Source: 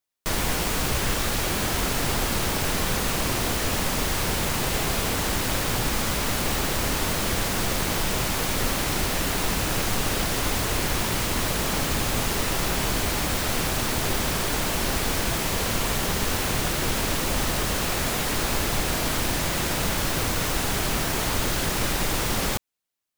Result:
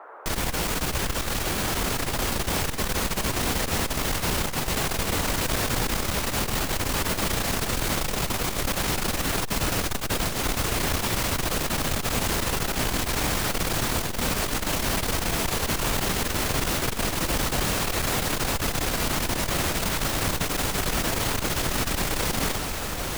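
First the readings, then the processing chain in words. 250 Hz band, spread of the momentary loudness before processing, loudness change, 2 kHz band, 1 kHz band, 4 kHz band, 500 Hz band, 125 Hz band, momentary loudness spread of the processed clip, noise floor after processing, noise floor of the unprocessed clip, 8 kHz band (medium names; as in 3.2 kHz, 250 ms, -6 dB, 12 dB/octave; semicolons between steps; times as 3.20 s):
-1.0 dB, 0 LU, -1.0 dB, -1.0 dB, -0.5 dB, -1.0 dB, -1.0 dB, -1.0 dB, 2 LU, -30 dBFS, -27 dBFS, -1.0 dB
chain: band noise 400–1400 Hz -44 dBFS; echo that smears into a reverb 1969 ms, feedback 59%, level -6 dB; transformer saturation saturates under 110 Hz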